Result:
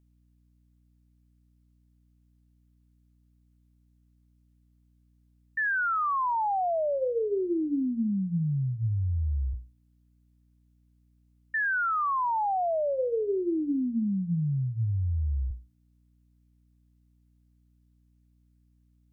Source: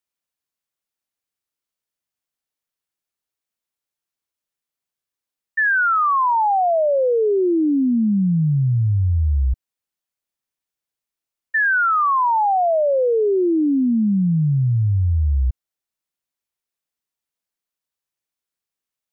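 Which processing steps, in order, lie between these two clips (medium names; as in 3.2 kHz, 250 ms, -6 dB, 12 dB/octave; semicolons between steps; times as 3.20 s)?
peak limiter -22 dBFS, peak gain reduction 8 dB; hum notches 60/120/180/240/300/360/420/480/540 Hz; hum 60 Hz, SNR 33 dB; trim -2 dB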